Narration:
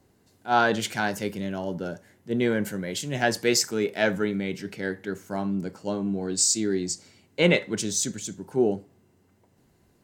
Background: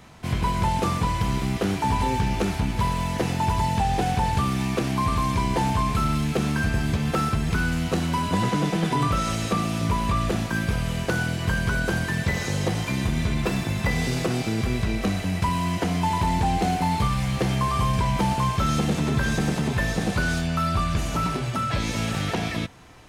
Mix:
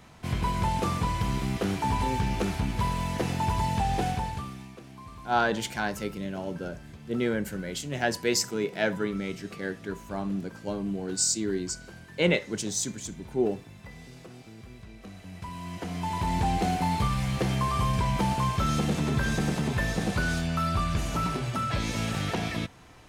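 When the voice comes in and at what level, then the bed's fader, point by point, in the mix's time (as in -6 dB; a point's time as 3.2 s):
4.80 s, -3.5 dB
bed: 4.06 s -4 dB
4.78 s -22 dB
14.95 s -22 dB
16.41 s -3.5 dB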